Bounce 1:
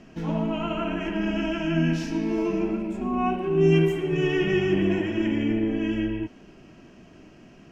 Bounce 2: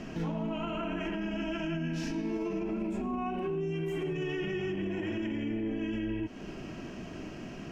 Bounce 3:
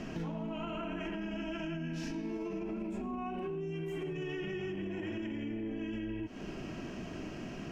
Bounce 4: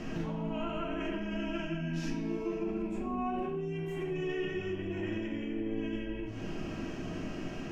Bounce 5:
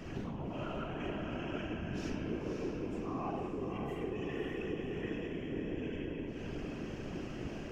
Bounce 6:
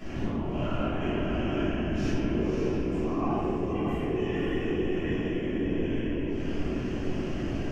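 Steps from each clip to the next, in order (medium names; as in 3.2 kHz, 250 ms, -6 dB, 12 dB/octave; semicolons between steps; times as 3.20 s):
compression 2.5:1, threshold -37 dBFS, peak gain reduction 14.5 dB; peak limiter -34 dBFS, peak gain reduction 10.5 dB; trim +7.5 dB
compression, threshold -35 dBFS, peak gain reduction 5.5 dB
simulated room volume 61 m³, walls mixed, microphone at 0.59 m
whisper effect; echo that smears into a reverb 555 ms, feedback 45%, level -5 dB; trim -5 dB
simulated room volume 320 m³, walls mixed, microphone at 3.1 m; trim -1 dB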